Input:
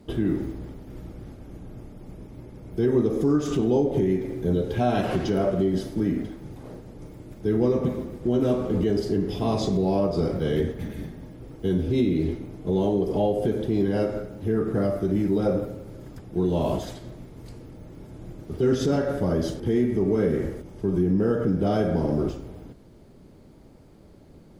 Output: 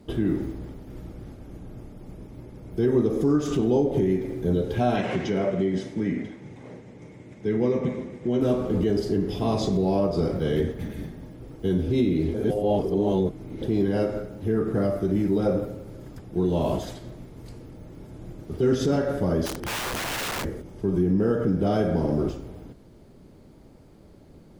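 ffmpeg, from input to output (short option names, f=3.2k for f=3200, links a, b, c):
-filter_complex "[0:a]asettb=1/sr,asplit=3[a][b][c];[a]atrim=end=4.964[d];[b]atrim=start=4.96:end=8.41,asetpts=PTS-STARTPTS,afade=t=in:d=0.004:c=qsin,afade=t=out:st=3.446:d=0.004:c=qsin,highpass=120,equalizer=f=320:t=q:w=4:g=-4,equalizer=f=680:t=q:w=4:g=-3,equalizer=f=1.3k:t=q:w=4:g=-4,equalizer=f=2.1k:t=q:w=4:g=9,equalizer=f=4.6k:t=q:w=4:g=-6,lowpass=f=8.1k:w=0.5412,lowpass=f=8.1k:w=1.3066[e];[c]atrim=start=8.406[f];[d][e]acrossfade=d=0.004:c1=hsin:c2=qsin[g];[g][f]acrossfade=d=0.004:c1=qsin:c2=hsin,asplit=3[h][i][j];[h]afade=t=out:st=19.45:d=0.02[k];[i]aeval=exprs='(mod(17.8*val(0)+1,2)-1)/17.8':c=same,afade=t=in:st=19.45:d=0.02,afade=t=out:st=20.43:d=0.02[l];[j]afade=t=in:st=20.43:d=0.02[m];[k][l][m]amix=inputs=3:normalize=0,asplit=3[n][o][p];[n]atrim=end=12.342[q];[o]atrim=start=12.338:end=13.622,asetpts=PTS-STARTPTS,areverse[r];[p]atrim=start=13.618[s];[q][r]acrossfade=d=0.004:c1=hsin:c2=hsin[t];[t][s]acrossfade=d=0.004:c1=hsin:c2=hsin"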